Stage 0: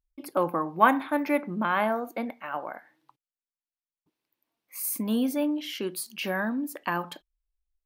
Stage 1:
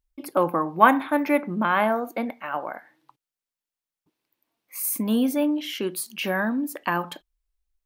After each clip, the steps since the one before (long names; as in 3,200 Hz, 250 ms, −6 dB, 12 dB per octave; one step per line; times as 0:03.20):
dynamic equaliser 4,700 Hz, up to −4 dB, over −54 dBFS, Q 3.7
level +4 dB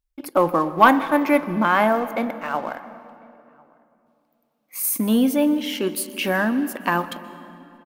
leveller curve on the samples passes 1
slap from a distant wall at 180 metres, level −28 dB
on a send at −14 dB: convolution reverb RT60 2.8 s, pre-delay 118 ms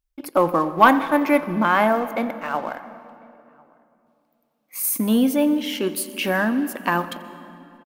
single-tap delay 87 ms −22 dB